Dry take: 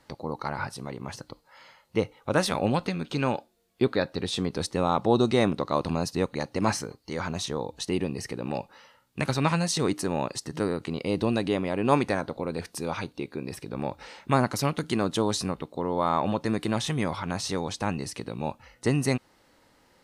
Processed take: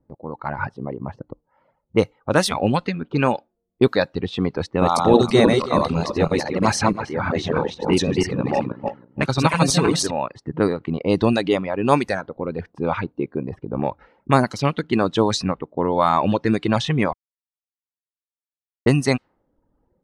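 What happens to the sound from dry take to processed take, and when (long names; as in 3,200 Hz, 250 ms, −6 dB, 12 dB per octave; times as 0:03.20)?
0:04.65–0:10.11: feedback delay that plays each chunk backwards 163 ms, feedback 48%, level −0.5 dB
0:17.13–0:18.86: silence
whole clip: reverb reduction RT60 1.1 s; low-pass that shuts in the quiet parts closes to 350 Hz, open at −21 dBFS; automatic gain control gain up to 10 dB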